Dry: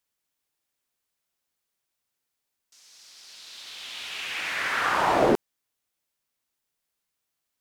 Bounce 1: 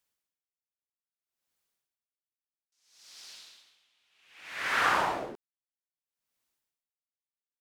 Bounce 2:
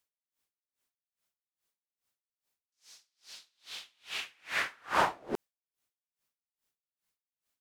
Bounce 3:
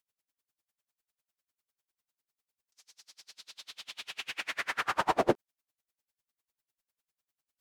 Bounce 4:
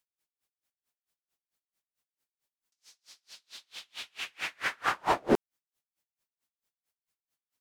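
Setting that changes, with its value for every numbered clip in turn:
logarithmic tremolo, rate: 0.62 Hz, 2.4 Hz, 10 Hz, 4.5 Hz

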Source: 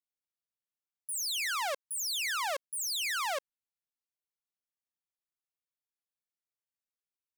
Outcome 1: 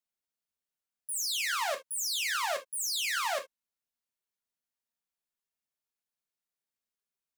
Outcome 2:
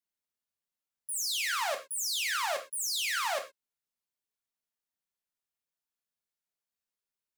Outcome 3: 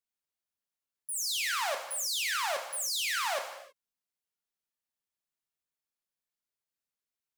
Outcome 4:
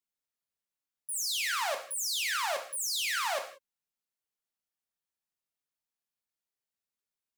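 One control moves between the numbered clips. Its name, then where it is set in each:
gated-style reverb, gate: 90 ms, 140 ms, 350 ms, 210 ms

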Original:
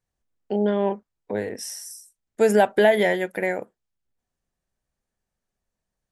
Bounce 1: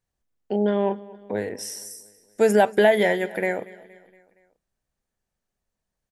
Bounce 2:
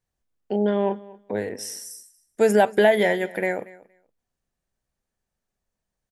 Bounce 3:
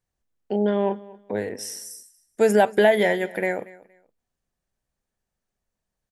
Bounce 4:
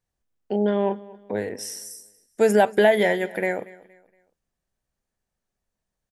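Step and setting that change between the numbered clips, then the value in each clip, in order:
feedback delay, feedback: 53%, 15%, 23%, 35%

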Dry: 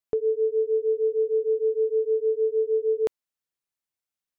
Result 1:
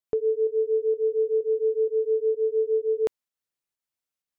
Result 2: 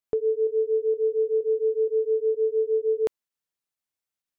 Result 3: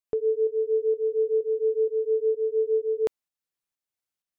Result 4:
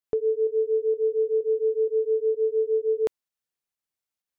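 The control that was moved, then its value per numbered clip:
volume shaper, release: 183 ms, 70 ms, 397 ms, 117 ms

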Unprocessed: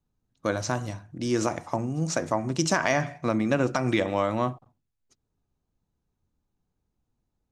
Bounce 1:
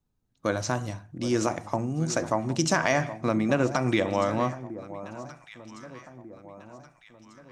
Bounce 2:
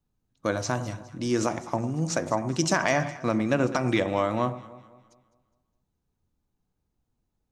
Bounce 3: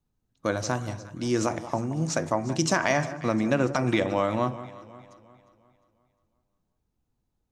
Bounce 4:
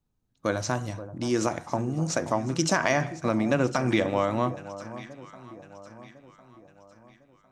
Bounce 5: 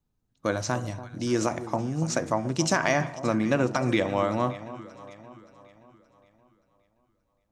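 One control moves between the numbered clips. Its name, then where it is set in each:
echo whose repeats swap between lows and highs, time: 772 ms, 103 ms, 177 ms, 527 ms, 287 ms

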